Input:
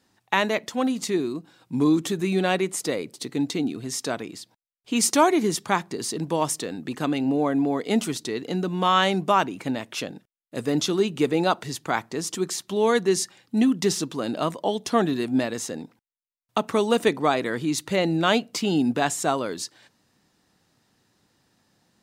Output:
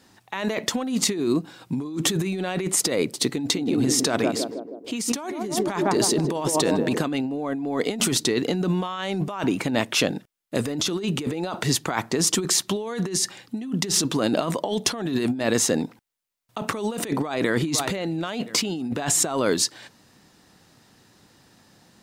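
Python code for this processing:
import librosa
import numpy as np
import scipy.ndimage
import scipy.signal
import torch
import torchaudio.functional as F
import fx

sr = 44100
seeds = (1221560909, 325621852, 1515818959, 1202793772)

y = fx.echo_banded(x, sr, ms=158, feedback_pct=64, hz=420.0, wet_db=-6.5, at=(3.55, 7.04), fade=0.02)
y = fx.echo_throw(y, sr, start_s=17.09, length_s=0.74, ms=510, feedback_pct=40, wet_db=-17.5)
y = fx.over_compress(y, sr, threshold_db=-30.0, ratio=-1.0)
y = y * librosa.db_to_amplitude(5.0)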